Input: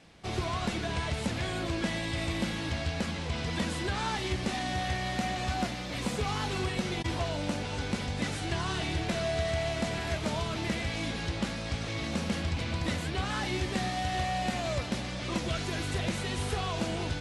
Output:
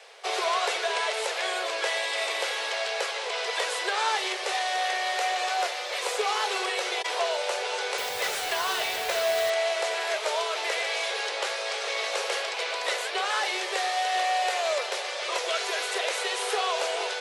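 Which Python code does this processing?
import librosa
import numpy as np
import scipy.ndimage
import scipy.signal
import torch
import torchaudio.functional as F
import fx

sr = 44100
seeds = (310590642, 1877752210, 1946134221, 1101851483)

p1 = scipy.signal.sosfilt(scipy.signal.butter(16, 400.0, 'highpass', fs=sr, output='sos'), x)
p2 = fx.rider(p1, sr, range_db=10, speed_s=2.0)
p3 = p1 + (p2 * librosa.db_to_amplitude(2.5))
y = fx.quant_dither(p3, sr, seeds[0], bits=6, dither='none', at=(7.98, 9.5))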